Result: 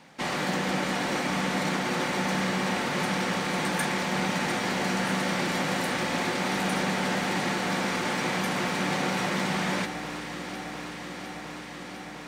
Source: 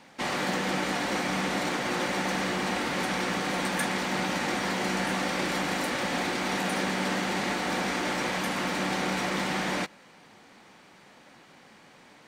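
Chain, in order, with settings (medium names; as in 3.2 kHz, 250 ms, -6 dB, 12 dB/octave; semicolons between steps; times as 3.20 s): peaking EQ 160 Hz +7 dB 0.28 oct; on a send: echo whose repeats swap between lows and highs 352 ms, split 1.7 kHz, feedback 89%, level -10 dB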